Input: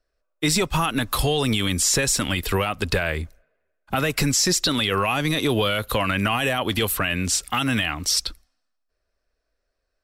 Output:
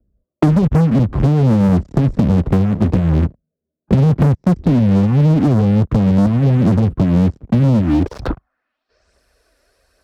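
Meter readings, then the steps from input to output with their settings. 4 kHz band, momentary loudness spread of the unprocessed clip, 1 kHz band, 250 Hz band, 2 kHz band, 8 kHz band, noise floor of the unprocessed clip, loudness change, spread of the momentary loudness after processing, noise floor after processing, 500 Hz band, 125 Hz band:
under -15 dB, 5 LU, -1.5 dB, +13.0 dB, -10.5 dB, under -20 dB, -76 dBFS, +7.5 dB, 5 LU, -81 dBFS, +4.0 dB, +15.5 dB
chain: low-pass sweep 190 Hz -> 11 kHz, 7.79–9.21 s; phaser 1.2 Hz, delay 3.6 ms, feedback 38%; waveshaping leveller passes 5; high-pass 56 Hz; three bands compressed up and down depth 100%; trim -2.5 dB

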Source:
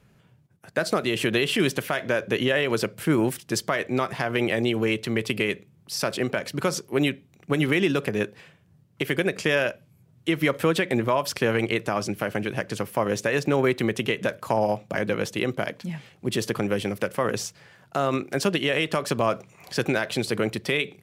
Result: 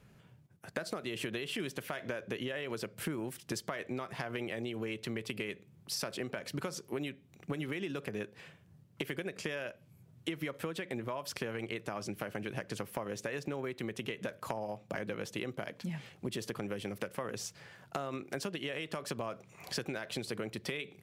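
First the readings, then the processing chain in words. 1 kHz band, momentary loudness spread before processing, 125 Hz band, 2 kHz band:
-14.5 dB, 7 LU, -13.5 dB, -14.5 dB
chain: compression 12:1, threshold -32 dBFS, peak gain reduction 17 dB; trim -2 dB

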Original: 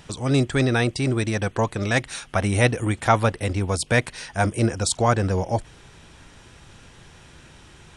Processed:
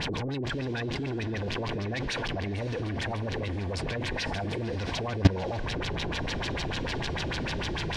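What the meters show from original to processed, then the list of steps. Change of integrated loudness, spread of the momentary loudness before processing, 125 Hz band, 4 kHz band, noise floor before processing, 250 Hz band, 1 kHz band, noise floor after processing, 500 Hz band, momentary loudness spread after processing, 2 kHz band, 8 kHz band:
-8.5 dB, 5 LU, -7.0 dB, -1.5 dB, -49 dBFS, -7.0 dB, -10.0 dB, -32 dBFS, -8.5 dB, 3 LU, -7.0 dB, -14.0 dB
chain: jump at every zero crossing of -22.5 dBFS; in parallel at -0.5 dB: compression, threshold -25 dBFS, peak gain reduction 13 dB; on the sum: saturation -11.5 dBFS, distortion -16 dB; Butterworth band-stop 1.3 kHz, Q 6.5; LFO low-pass sine 6.7 Hz 340–4800 Hz; peak limiter -16 dBFS, peak gain reduction 11 dB; on a send: echo that smears into a reverb 571 ms, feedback 44%, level -13 dB; on the sum: level held to a coarse grid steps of 19 dB; trim +6.5 dB

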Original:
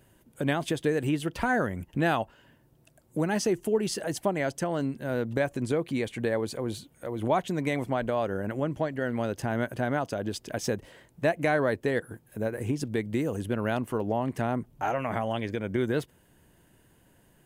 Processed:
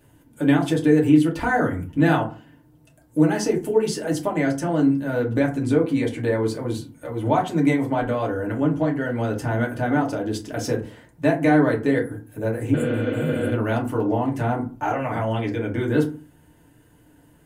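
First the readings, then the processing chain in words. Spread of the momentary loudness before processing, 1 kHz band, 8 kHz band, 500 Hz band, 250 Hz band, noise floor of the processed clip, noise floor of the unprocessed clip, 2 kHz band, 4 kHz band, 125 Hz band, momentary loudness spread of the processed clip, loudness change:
6 LU, +5.5 dB, +2.5 dB, +5.5 dB, +10.0 dB, -55 dBFS, -62 dBFS, +4.5 dB, +2.5 dB, +8.0 dB, 9 LU, +7.5 dB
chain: FDN reverb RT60 0.35 s, low-frequency decay 1.45×, high-frequency decay 0.5×, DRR -2.5 dB; spectral replace 12.77–13.48 s, 220–6900 Hz after

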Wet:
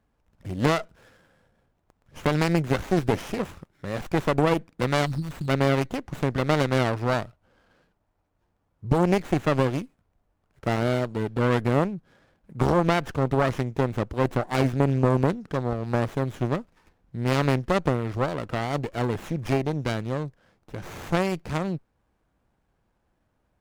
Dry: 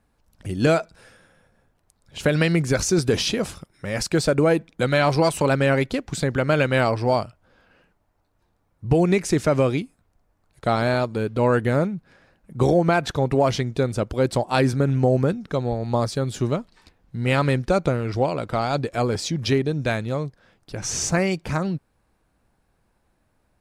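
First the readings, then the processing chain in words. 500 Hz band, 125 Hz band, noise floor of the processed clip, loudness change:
-4.5 dB, -2.5 dB, -73 dBFS, -3.5 dB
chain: spectral selection erased 5.06–5.49 s, 250–3400 Hz; Chebyshev shaper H 2 -15 dB, 4 -7 dB, 6 -23 dB, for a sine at -5.5 dBFS; sliding maximum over 9 samples; trim -3.5 dB

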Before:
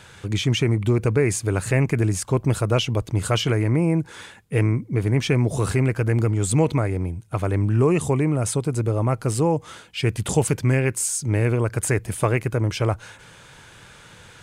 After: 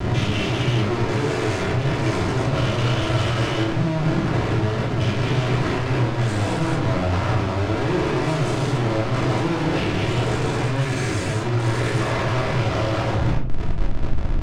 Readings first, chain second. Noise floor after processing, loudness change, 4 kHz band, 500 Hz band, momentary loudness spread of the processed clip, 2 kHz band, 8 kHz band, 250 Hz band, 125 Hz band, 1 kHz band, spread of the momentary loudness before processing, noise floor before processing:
-24 dBFS, 0.0 dB, +2.5 dB, -0.5 dB, 2 LU, +4.0 dB, -9.0 dB, +0.5 dB, 0.0 dB, +6.0 dB, 5 LU, -47 dBFS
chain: every event in the spectrogram widened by 480 ms; compression 10:1, threshold -18 dBFS, peak gain reduction 10 dB; hysteresis with a dead band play -41.5 dBFS; vibrato 1.7 Hz 53 cents; Schmitt trigger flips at -32.5 dBFS; distance through air 110 m; simulated room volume 510 m³, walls furnished, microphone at 3 m; trim -4 dB

